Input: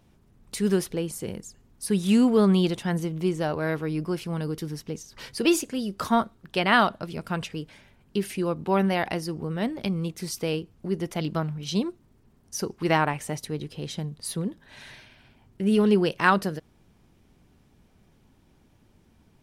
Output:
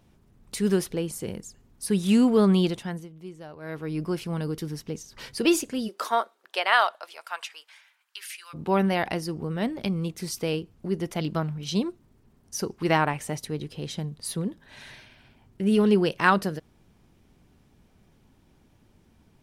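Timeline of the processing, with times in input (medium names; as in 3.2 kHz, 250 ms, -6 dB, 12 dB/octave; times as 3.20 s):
2.63–4.04 s: dip -15.5 dB, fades 0.45 s
5.87–8.53 s: high-pass 350 Hz -> 1.5 kHz 24 dB/octave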